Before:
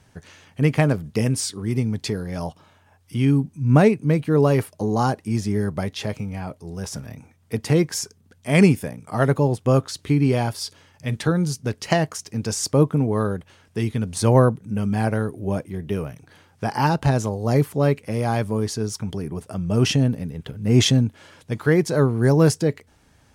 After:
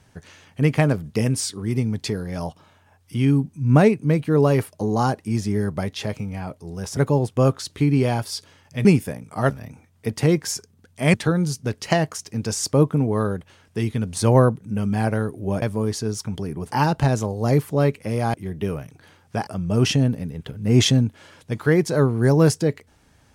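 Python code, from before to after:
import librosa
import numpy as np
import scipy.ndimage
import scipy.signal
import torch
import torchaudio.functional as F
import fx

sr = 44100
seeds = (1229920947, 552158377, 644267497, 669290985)

y = fx.edit(x, sr, fx.swap(start_s=6.97, length_s=1.64, other_s=9.26, other_length_s=1.88),
    fx.swap(start_s=15.62, length_s=1.13, other_s=18.37, other_length_s=1.1), tone=tone)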